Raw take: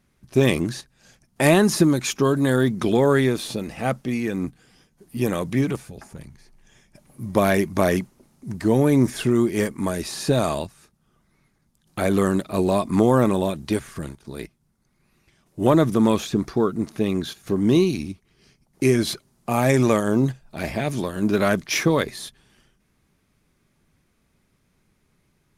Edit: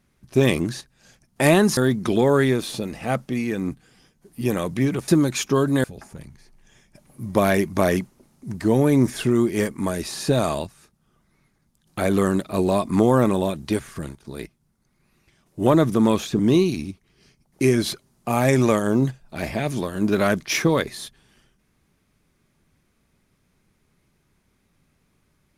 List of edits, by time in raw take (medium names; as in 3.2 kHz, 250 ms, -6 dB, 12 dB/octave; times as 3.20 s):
1.77–2.53 s: move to 5.84 s
16.39–17.60 s: delete